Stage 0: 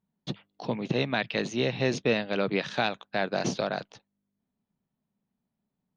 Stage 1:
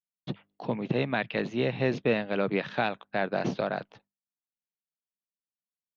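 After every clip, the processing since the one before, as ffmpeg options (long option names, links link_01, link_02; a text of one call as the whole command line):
ffmpeg -i in.wav -af "lowpass=2700,agate=range=-33dB:threshold=-56dB:ratio=3:detection=peak" out.wav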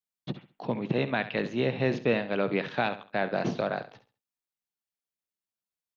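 ffmpeg -i in.wav -af "aecho=1:1:68|136|204:0.224|0.0649|0.0188" out.wav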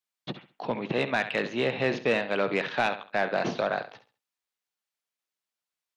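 ffmpeg -i in.wav -filter_complex "[0:a]asplit=2[link_01][link_02];[link_02]highpass=frequency=720:poles=1,volume=12dB,asoftclip=type=tanh:threshold=-12.5dB[link_03];[link_01][link_03]amix=inputs=2:normalize=0,lowpass=frequency=5500:poles=1,volume=-6dB,volume=-1dB" out.wav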